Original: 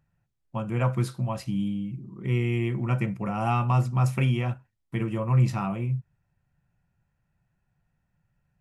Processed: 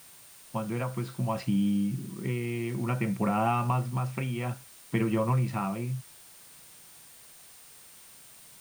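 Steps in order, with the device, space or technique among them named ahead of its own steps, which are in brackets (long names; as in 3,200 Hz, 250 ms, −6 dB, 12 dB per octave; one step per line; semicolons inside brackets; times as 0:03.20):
medium wave at night (band-pass filter 140–3,700 Hz; downward compressor, threshold −29 dBFS, peak gain reduction 9 dB; amplitude tremolo 0.59 Hz, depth 51%; steady tone 9,000 Hz −62 dBFS; white noise bed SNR 22 dB)
level +6.5 dB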